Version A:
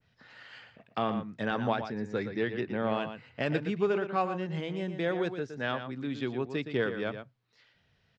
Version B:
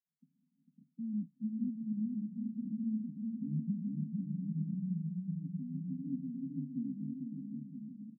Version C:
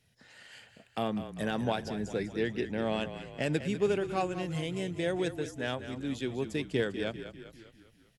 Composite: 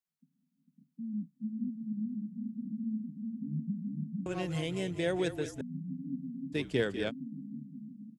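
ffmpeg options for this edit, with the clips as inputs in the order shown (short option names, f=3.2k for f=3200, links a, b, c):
-filter_complex "[2:a]asplit=2[a][b];[1:a]asplit=3[c][d][e];[c]atrim=end=4.262[f];[a]atrim=start=4.258:end=5.612[g];[d]atrim=start=5.608:end=6.56[h];[b]atrim=start=6.52:end=7.12[i];[e]atrim=start=7.08[j];[f][g]acrossfade=d=0.004:c1=hsin:c2=hsin[k];[k][h]acrossfade=d=0.004:c1=hsin:c2=hsin[l];[l][i]acrossfade=d=0.04:c1=tri:c2=tri[m];[m][j]acrossfade=d=0.04:c1=tri:c2=tri"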